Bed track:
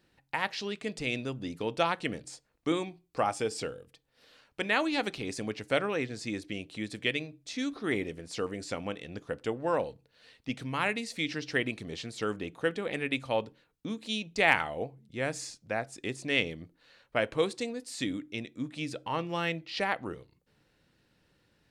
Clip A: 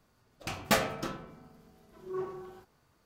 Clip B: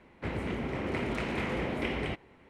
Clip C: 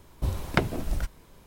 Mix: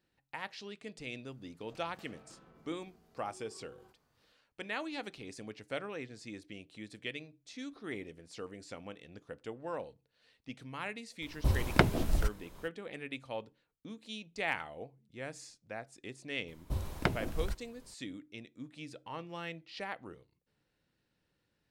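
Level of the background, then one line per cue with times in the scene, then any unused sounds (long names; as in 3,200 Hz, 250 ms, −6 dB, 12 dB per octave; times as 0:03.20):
bed track −10.5 dB
0:01.28: mix in A −7 dB + downward compressor, threshold −49 dBFS
0:11.22: mix in C −0.5 dB
0:16.48: mix in C −7 dB
not used: B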